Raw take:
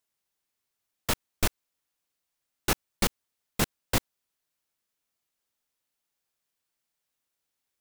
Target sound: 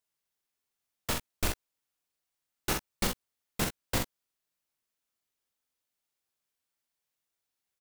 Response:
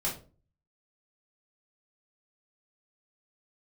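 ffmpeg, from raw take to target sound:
-af "aecho=1:1:46|62:0.562|0.251,volume=-4.5dB"

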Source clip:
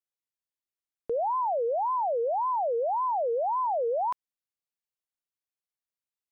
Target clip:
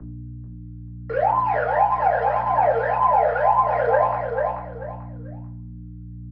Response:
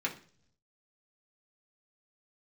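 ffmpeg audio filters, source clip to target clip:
-filter_complex "[0:a]equalizer=f=160:w=1.1:g=-14.5,bandreject=f=980:w=5.4,flanger=delay=18.5:depth=2.3:speed=3,asoftclip=type=hard:threshold=-30dB,aresample=11025,acrusher=bits=3:mode=log:mix=0:aa=0.000001,aresample=44100,aeval=exprs='val(0)+0.00355*(sin(2*PI*60*n/s)+sin(2*PI*2*60*n/s)/2+sin(2*PI*3*60*n/s)/3+sin(2*PI*4*60*n/s)/4+sin(2*PI*5*60*n/s)/5)':c=same,lowpass=f=1.4k:t=q:w=1.8,aphaser=in_gain=1:out_gain=1:delay=1.6:decay=0.53:speed=0.76:type=triangular,aecho=1:1:439|878|1317:0.447|0.116|0.0302[a];[1:a]atrim=start_sample=2205,asetrate=32634,aresample=44100[b];[a][b]afir=irnorm=-1:irlink=0,acrossover=split=81|190|420[c][d][e][f];[c]acompressor=threshold=-51dB:ratio=4[g];[d]acompressor=threshold=-47dB:ratio=4[h];[e]acompressor=threshold=-50dB:ratio=4[i];[f]acompressor=threshold=-22dB:ratio=4[j];[g][h][i][j]amix=inputs=4:normalize=0,volume=7.5dB"

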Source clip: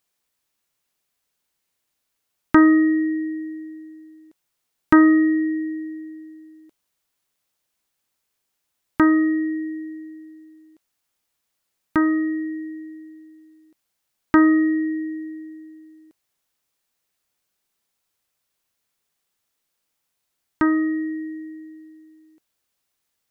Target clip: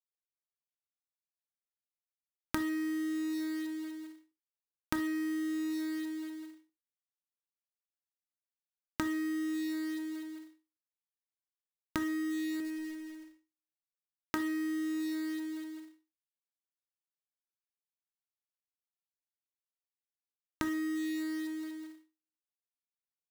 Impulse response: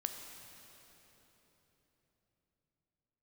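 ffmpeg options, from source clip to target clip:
-filter_complex "[0:a]agate=range=-50dB:threshold=-45dB:ratio=16:detection=peak,asettb=1/sr,asplit=3[a][b][c];[a]atrim=end=12.604[d];[b]atrim=start=12.6:end=14.36,asetpts=PTS-STARTPTS,afade=t=in:d=0.004:c=qsin,afade=t=out:st=1.756:d=0.004:c=qsin,bass=f=250:g=-10,treble=f=4k:g=-7[e];[c]atrim=start=14.356[f];[d][e]acrossfade=d=0.004:c1=hsin:c2=qsin[g];[g][f]acrossfade=d=0.004:c1=qsin:c2=hsin,acompressor=threshold=-32dB:ratio=8,acrusher=bits=3:mode=log:mix=0:aa=0.000001[h];[1:a]atrim=start_sample=2205,atrim=end_sample=3528[i];[h][i]afir=irnorm=-1:irlink=0"

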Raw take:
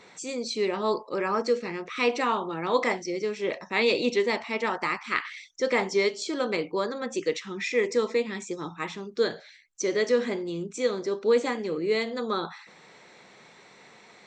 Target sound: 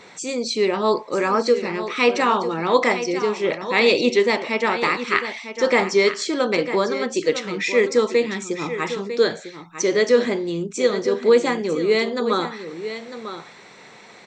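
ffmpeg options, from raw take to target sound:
-af "aecho=1:1:950:0.282,volume=7dB"

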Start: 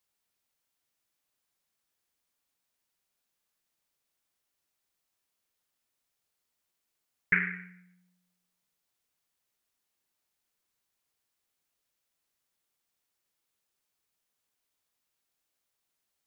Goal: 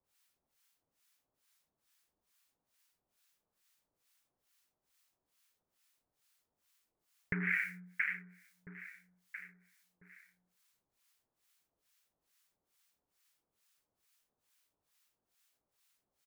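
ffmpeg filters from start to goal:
-filter_complex "[0:a]asettb=1/sr,asplit=3[a][b][c];[a]atrim=end=7.404[d];[b]atrim=start=7.4:end=7.85,asetpts=PTS-STARTPTS,afade=t=in:d=0.004:c=qsin,afade=t=out:st=0.446:d=0.004:c=qsin,highshelf=f=2k:g=11[e];[c]atrim=start=7.846[f];[d][e]acrossfade=d=0.004:c1=hsin:c2=qsin[g];[g][f]acrossfade=d=0.004:c1=qsin:c2=hsin,aecho=1:1:673|1346|2019|2692:0.15|0.0733|0.0359|0.0176,alimiter=limit=-20dB:level=0:latency=1:release=214,acrossover=split=980[h][i];[h]aeval=exprs='val(0)*(1-1/2+1/2*cos(2*PI*2.3*n/s))':c=same[j];[i]aeval=exprs='val(0)*(1-1/2-1/2*cos(2*PI*2.3*n/s))':c=same[k];[j][k]amix=inputs=2:normalize=0,adynamicequalizer=threshold=0.001:dfrequency=2700:dqfactor=0.7:tfrequency=2700:tqfactor=0.7:attack=5:release=100:ratio=0.375:range=2.5:mode=boostabove:tftype=highshelf,volume=7.5dB"

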